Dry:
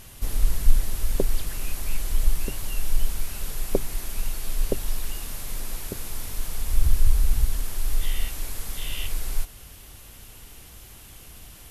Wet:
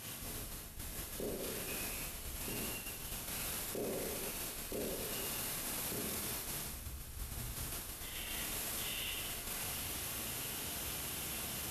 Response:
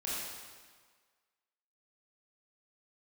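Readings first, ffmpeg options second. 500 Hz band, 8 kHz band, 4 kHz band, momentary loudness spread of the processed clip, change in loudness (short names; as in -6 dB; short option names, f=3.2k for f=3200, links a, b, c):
-7.5 dB, -4.0 dB, -3.5 dB, 5 LU, -9.5 dB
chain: -filter_complex "[1:a]atrim=start_sample=2205[a];[0:a][a]afir=irnorm=-1:irlink=0,areverse,acompressor=threshold=-28dB:ratio=8,areverse,highpass=100,alimiter=level_in=10dB:limit=-24dB:level=0:latency=1:release=14,volume=-10dB,volume=3dB"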